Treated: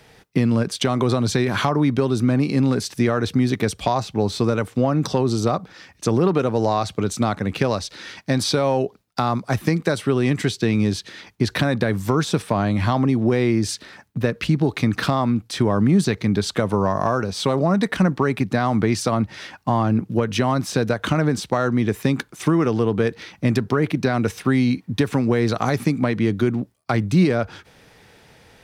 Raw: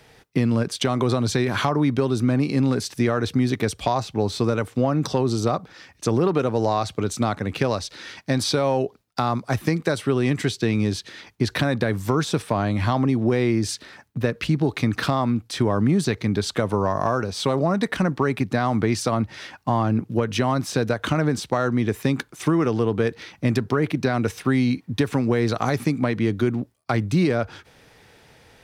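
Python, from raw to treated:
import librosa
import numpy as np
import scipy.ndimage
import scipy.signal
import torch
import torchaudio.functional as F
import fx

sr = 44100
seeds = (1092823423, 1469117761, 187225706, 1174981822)

y = fx.peak_eq(x, sr, hz=190.0, db=4.0, octaves=0.29)
y = y * librosa.db_to_amplitude(1.5)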